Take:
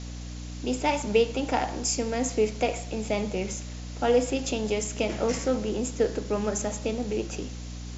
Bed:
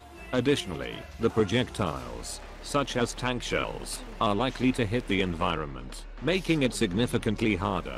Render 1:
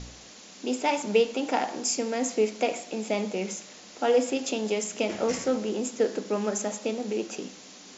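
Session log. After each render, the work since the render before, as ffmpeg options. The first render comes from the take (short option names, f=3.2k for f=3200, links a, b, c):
-af "bandreject=f=60:t=h:w=4,bandreject=f=120:t=h:w=4,bandreject=f=180:t=h:w=4,bandreject=f=240:t=h:w=4,bandreject=f=300:t=h:w=4"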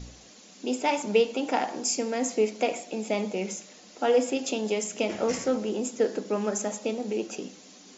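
-af "afftdn=nr=6:nf=-48"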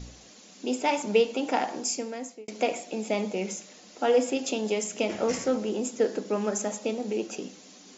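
-filter_complex "[0:a]asplit=2[a][b];[a]atrim=end=2.48,asetpts=PTS-STARTPTS,afade=t=out:st=1.74:d=0.74[c];[b]atrim=start=2.48,asetpts=PTS-STARTPTS,afade=t=in:d=0.004:c=hsin[d];[c][d]concat=n=2:v=0:a=1"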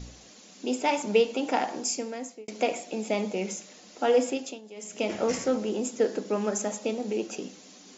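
-filter_complex "[0:a]asplit=3[a][b][c];[a]atrim=end=4.61,asetpts=PTS-STARTPTS,afade=t=out:st=4.26:d=0.35:silence=0.125893[d];[b]atrim=start=4.61:end=4.74,asetpts=PTS-STARTPTS,volume=-18dB[e];[c]atrim=start=4.74,asetpts=PTS-STARTPTS,afade=t=in:d=0.35:silence=0.125893[f];[d][e][f]concat=n=3:v=0:a=1"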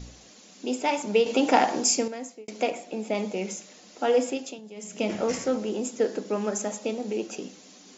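-filter_complex "[0:a]asettb=1/sr,asplit=3[a][b][c];[a]atrim=end=1.264[d];[b]atrim=start=1.26:end=2.08,asetpts=PTS-STARTPTS,afade=t=in:d=0.004:c=qsin,afade=t=out:st=0.816:d=0.004:c=qsin,acontrast=82[e];[c]atrim=start=2.076[f];[d][e]acrossfade=d=0.004:c1=hsin:c2=qsin[g];[g][f]acrossfade=d=0.004:c1=qsin:c2=hsin,asettb=1/sr,asplit=3[h][i][j];[h]atrim=end=2.704[k];[i]atrim=start=2.7:end=3.15,asetpts=PTS-STARTPTS,afade=t=in:d=0.004:c=qsin,afade=t=out:st=0.446:d=0.004:c=qsin,highshelf=f=3.7k:g=-7.5[l];[j]atrim=start=3.146[m];[k][l]acrossfade=d=0.004:c1=hsin:c2=qsin[n];[n][m]acrossfade=d=0.004:c1=qsin:c2=hsin,asettb=1/sr,asplit=3[o][p][q];[o]atrim=end=4.584[r];[p]atrim=start=4.58:end=5.21,asetpts=PTS-STARTPTS,afade=t=in:d=0.004:c=qsin,afade=t=out:st=0.626:d=0.004:c=qsin,equalizer=f=170:t=o:w=0.77:g=9[s];[q]atrim=start=5.206[t];[r][s]acrossfade=d=0.004:c1=hsin:c2=qsin[u];[u][t]acrossfade=d=0.004:c1=qsin:c2=hsin"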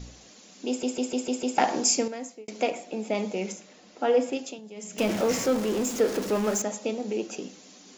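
-filter_complex "[0:a]asettb=1/sr,asplit=3[a][b][c];[a]atrim=end=3.524[d];[b]atrim=start=3.52:end=4.33,asetpts=PTS-STARTPTS,afade=t=in:d=0.004:c=qsin,afade=t=out:st=0.806:d=0.004:c=qsin,lowpass=f=3k:p=1[e];[c]atrim=start=4.326[f];[d][e]acrossfade=d=0.004:c1=hsin:c2=qsin[g];[g][f]acrossfade=d=0.004:c1=qsin:c2=hsin,asettb=1/sr,asplit=3[h][i][j];[h]atrim=end=4.984[k];[i]atrim=start=4.98:end=6.62,asetpts=PTS-STARTPTS,afade=t=in:d=0.004:c=qsin,afade=t=out:st=1.636:d=0.004:c=qsin,aeval=exprs='val(0)+0.5*0.0316*sgn(val(0))':c=same[l];[j]atrim=start=6.616[m];[k][l]acrossfade=d=0.004:c1=hsin:c2=qsin[n];[n][m]acrossfade=d=0.004:c1=qsin:c2=hsin,asplit=7[o][p][q][r][s][t][u];[o]atrim=end=0.832[v];[p]atrim=start=0.678:end=0.832[w];[q]atrim=start=0.678:end=0.832[x];[r]atrim=start=0.678:end=0.832[y];[s]atrim=start=0.678:end=0.832[z];[t]atrim=start=0.678:end=0.832[aa];[u]atrim=start=1.578[ab];[v][w]acrossfade=d=0.004:c1=hsin:c2=hsin[ac];[ac][x]acrossfade=d=0.004:c1=hsin:c2=hsin[ad];[ad][y]acrossfade=d=0.004:c1=hsin:c2=hsin[ae];[ae][z]acrossfade=d=0.004:c1=hsin:c2=hsin[af];[af][aa]acrossfade=d=0.004:c1=hsin:c2=hsin[ag];[ag][ab]acrossfade=d=0.004:c1=hsin:c2=hsin"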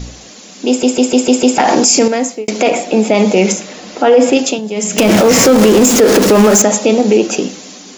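-af "dynaudnorm=f=550:g=5:m=7.5dB,alimiter=level_in=15.5dB:limit=-1dB:release=50:level=0:latency=1"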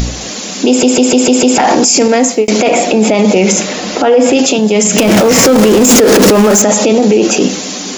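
-af "acompressor=mode=upward:threshold=-28dB:ratio=2.5,alimiter=level_in=12dB:limit=-1dB:release=50:level=0:latency=1"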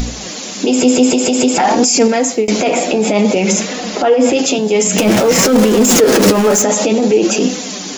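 -af "flanger=delay=4:depth=8:regen=38:speed=0.53:shape=sinusoidal"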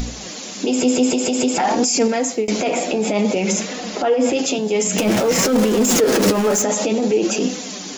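-af "volume=-6dB"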